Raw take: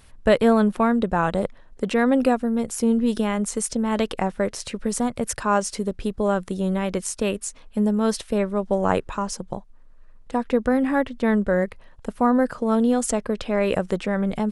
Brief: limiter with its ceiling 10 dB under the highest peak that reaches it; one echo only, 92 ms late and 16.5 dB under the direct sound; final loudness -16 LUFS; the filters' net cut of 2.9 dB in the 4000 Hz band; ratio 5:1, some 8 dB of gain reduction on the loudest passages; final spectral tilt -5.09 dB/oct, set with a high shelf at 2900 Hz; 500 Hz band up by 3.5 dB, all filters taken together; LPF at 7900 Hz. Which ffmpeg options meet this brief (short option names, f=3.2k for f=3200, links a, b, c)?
-af "lowpass=7.9k,equalizer=f=500:t=o:g=4,highshelf=f=2.9k:g=5,equalizer=f=4k:t=o:g=-8.5,acompressor=threshold=-19dB:ratio=5,alimiter=limit=-18.5dB:level=0:latency=1,aecho=1:1:92:0.15,volume=13dB"